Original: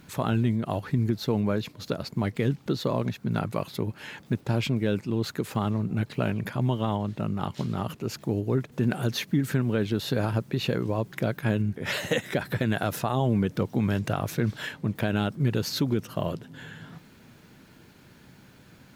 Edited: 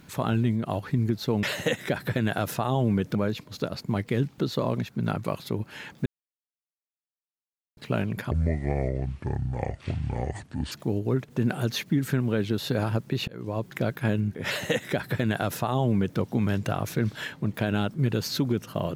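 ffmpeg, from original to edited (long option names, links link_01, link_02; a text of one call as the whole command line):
ffmpeg -i in.wav -filter_complex "[0:a]asplit=8[link_01][link_02][link_03][link_04][link_05][link_06][link_07][link_08];[link_01]atrim=end=1.432[link_09];[link_02]atrim=start=11.878:end=13.602[link_10];[link_03]atrim=start=1.428:end=4.34,asetpts=PTS-STARTPTS,afade=type=out:start_time=2.908:duration=0.004:curve=hsin[link_11];[link_04]atrim=start=4.34:end=6.05,asetpts=PTS-STARTPTS,volume=0[link_12];[link_05]atrim=start=6.05:end=6.594,asetpts=PTS-STARTPTS,afade=type=in:duration=0.004:curve=hsin[link_13];[link_06]atrim=start=6.59:end=8.13,asetpts=PTS-STARTPTS,asetrate=28224,aresample=44100[link_14];[link_07]atrim=start=8.126:end=10.69,asetpts=PTS-STARTPTS,afade=type=out:start_time=2.56:duration=0.004:curve=hsin[link_15];[link_08]atrim=start=10.69,asetpts=PTS-STARTPTS,afade=type=in:duration=0.5:curve=qsin[link_16];[link_09][link_10]acrossfade=duration=0.004:curve1=hsin:curve2=hsin[link_17];[link_11][link_12][link_13]concat=n=3:v=0:a=1[link_18];[link_17][link_18]acrossfade=duration=0.004:curve1=hsin:curve2=hsin[link_19];[link_19][link_14]acrossfade=duration=0.004:curve1=hsin:curve2=hsin[link_20];[link_15][link_16]concat=n=2:v=0:a=1[link_21];[link_20][link_21]acrossfade=duration=0.004:curve1=hsin:curve2=hsin" out.wav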